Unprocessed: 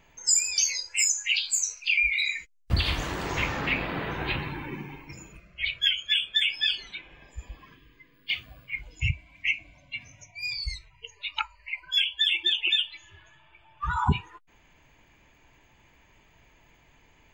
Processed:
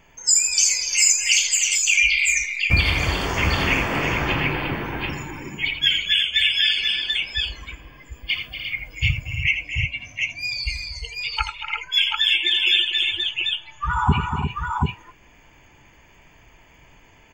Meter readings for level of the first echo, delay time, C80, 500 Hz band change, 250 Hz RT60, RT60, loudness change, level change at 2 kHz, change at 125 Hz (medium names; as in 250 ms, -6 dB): -8.5 dB, 83 ms, no reverb, +8.0 dB, no reverb, no reverb, +6.5 dB, +8.0 dB, +8.0 dB